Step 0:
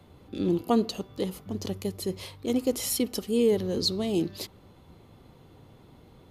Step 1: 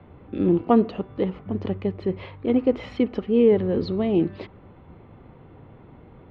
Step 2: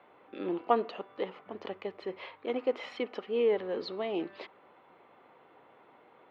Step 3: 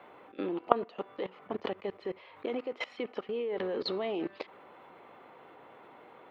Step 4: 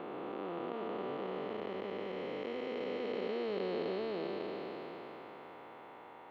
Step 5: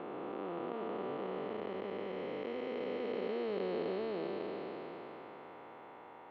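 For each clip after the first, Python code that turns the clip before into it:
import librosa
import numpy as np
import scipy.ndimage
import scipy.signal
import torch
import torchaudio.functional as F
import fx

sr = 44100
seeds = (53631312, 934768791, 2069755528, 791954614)

y1 = scipy.signal.sosfilt(scipy.signal.butter(4, 2400.0, 'lowpass', fs=sr, output='sos'), x)
y1 = y1 * 10.0 ** (6.0 / 20.0)
y2 = scipy.signal.sosfilt(scipy.signal.butter(2, 630.0, 'highpass', fs=sr, output='sos'), y1)
y2 = y2 * 10.0 ** (-2.0 / 20.0)
y3 = fx.level_steps(y2, sr, step_db=21)
y3 = y3 * 10.0 ** (9.0 / 20.0)
y4 = fx.spec_blur(y3, sr, span_ms=1340.0)
y4 = y4 * 10.0 ** (4.0 / 20.0)
y5 = fx.high_shelf(y4, sr, hz=5000.0, db=-11.0)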